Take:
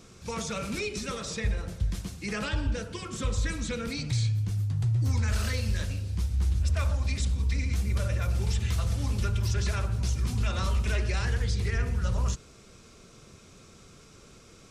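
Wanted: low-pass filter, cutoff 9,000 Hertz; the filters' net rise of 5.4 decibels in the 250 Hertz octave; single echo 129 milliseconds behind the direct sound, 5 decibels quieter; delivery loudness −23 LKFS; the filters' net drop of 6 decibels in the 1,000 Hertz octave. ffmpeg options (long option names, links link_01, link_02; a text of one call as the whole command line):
ffmpeg -i in.wav -af "lowpass=9000,equalizer=frequency=250:width_type=o:gain=7.5,equalizer=frequency=1000:width_type=o:gain=-9,aecho=1:1:129:0.562,volume=5dB" out.wav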